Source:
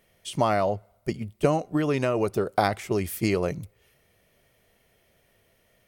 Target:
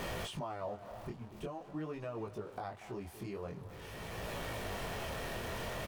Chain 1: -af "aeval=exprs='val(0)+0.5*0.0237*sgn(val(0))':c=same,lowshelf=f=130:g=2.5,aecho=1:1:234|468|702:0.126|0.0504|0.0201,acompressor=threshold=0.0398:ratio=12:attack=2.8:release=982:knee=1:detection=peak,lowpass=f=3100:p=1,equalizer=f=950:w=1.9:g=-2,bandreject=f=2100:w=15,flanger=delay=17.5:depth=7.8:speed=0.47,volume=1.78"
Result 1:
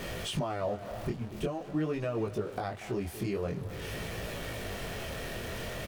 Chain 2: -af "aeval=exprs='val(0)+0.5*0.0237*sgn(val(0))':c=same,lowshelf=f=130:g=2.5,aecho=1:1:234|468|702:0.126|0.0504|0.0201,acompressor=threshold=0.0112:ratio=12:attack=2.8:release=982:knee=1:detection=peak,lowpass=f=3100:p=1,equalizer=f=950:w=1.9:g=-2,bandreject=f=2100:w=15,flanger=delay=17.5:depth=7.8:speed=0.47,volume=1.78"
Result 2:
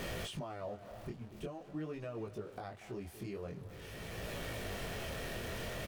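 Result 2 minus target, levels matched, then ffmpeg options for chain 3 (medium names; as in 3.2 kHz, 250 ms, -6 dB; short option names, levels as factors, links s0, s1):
1 kHz band -3.5 dB
-af "aeval=exprs='val(0)+0.5*0.0237*sgn(val(0))':c=same,lowshelf=f=130:g=2.5,aecho=1:1:234|468|702:0.126|0.0504|0.0201,acompressor=threshold=0.0112:ratio=12:attack=2.8:release=982:knee=1:detection=peak,lowpass=f=3100:p=1,equalizer=f=950:w=1.9:g=5.5,bandreject=f=2100:w=15,flanger=delay=17.5:depth=7.8:speed=0.47,volume=1.78"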